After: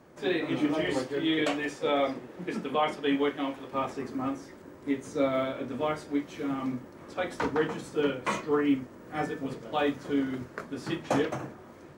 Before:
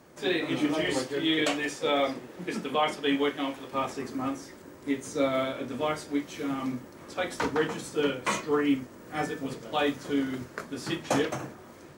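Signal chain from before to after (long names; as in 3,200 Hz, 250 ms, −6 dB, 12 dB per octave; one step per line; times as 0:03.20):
high-shelf EQ 3,200 Hz −9 dB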